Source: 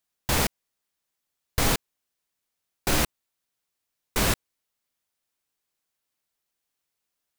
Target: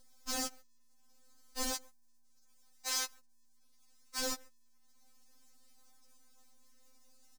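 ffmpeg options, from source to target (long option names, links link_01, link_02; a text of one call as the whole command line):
ffmpeg -i in.wav -filter_complex "[0:a]aeval=exprs='if(lt(val(0),0),0.447*val(0),val(0))':channel_layout=same,asettb=1/sr,asplit=3[link_01][link_02][link_03];[link_01]atrim=end=1.734[link_04];[link_02]atrim=start=1.73:end=4.2,asetpts=PTS-STARTPTS,afade=type=in:duration=0.004:curve=qsin,afade=type=out:start_time=2.466:duration=0.004:curve=qsin,highpass=940[link_05];[link_03]atrim=start=4.196[link_06];[link_04][link_05]acrossfade=duration=0.004:curve1=hsin:curve2=qsin[link_07];[link_07][link_06]acrossfade=duration=0.004:curve1=qsin:curve2=hsin,asplit=2[link_08][link_09];[link_09]adelay=140,highpass=300,lowpass=3400,asoftclip=type=hard:threshold=-19.5dB,volume=-23dB[link_10];[link_08][link_10]amix=inputs=2:normalize=0,asoftclip=type=tanh:threshold=-27dB,lowpass=9400,acompressor=mode=upward:threshold=-45dB:ratio=2.5,aeval=exprs='val(0)+0.000891*(sin(2*PI*60*n/s)+sin(2*PI*2*60*n/s)/2+sin(2*PI*3*60*n/s)/3+sin(2*PI*4*60*n/s)/4+sin(2*PI*5*60*n/s)/5)':channel_layout=same,adynamicsmooth=sensitivity=8:basefreq=1700,acrusher=bits=8:dc=4:mix=0:aa=0.000001,highshelf=frequency=4100:width_type=q:width=1.5:gain=11.5,afftfilt=real='re*3.46*eq(mod(b,12),0)':imag='im*3.46*eq(mod(b,12),0)':win_size=2048:overlap=0.75,volume=-2dB" out.wav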